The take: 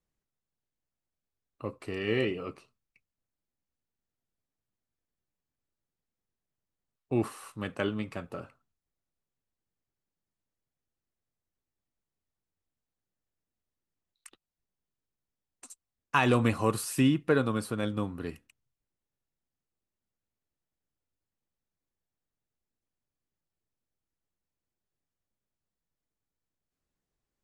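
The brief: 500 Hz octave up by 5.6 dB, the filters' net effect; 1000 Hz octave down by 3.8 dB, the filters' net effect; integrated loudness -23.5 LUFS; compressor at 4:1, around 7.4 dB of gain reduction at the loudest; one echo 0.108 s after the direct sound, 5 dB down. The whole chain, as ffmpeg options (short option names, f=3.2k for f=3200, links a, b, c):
-af "equalizer=f=500:t=o:g=8,equalizer=f=1k:t=o:g=-7,acompressor=threshold=-24dB:ratio=4,aecho=1:1:108:0.562,volume=7dB"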